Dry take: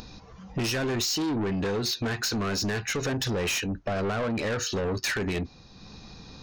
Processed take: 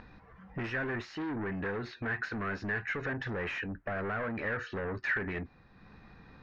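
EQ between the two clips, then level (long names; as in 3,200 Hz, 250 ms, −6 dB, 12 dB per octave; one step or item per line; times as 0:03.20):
low-pass with resonance 1,800 Hz, resonance Q 3.2
−8.5 dB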